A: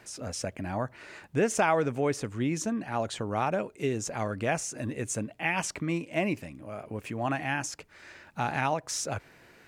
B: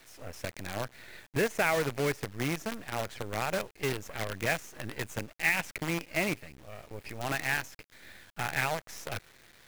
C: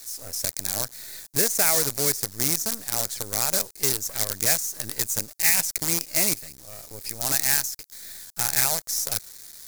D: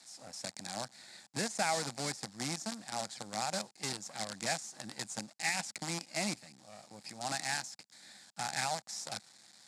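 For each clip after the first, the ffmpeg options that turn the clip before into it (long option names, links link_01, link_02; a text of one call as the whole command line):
ffmpeg -i in.wav -af "equalizer=frequency=250:width_type=o:width=1:gain=-7,equalizer=frequency=1000:width_type=o:width=1:gain=-9,equalizer=frequency=2000:width_type=o:width=1:gain=8,equalizer=frequency=4000:width_type=o:width=1:gain=-6,equalizer=frequency=8000:width_type=o:width=1:gain=-10,acrusher=bits=6:dc=4:mix=0:aa=0.000001" out.wav
ffmpeg -i in.wav -af "aexciter=amount=9.1:drive=4.9:freq=4200" out.wav
ffmpeg -i in.wav -af "highpass=frequency=130:width=0.5412,highpass=frequency=130:width=1.3066,equalizer=frequency=210:width_type=q:width=4:gain=7,equalizer=frequency=420:width_type=q:width=4:gain=-9,equalizer=frequency=790:width_type=q:width=4:gain=9,equalizer=frequency=6100:width_type=q:width=4:gain=-8,lowpass=frequency=7300:width=0.5412,lowpass=frequency=7300:width=1.3066,volume=-8dB" out.wav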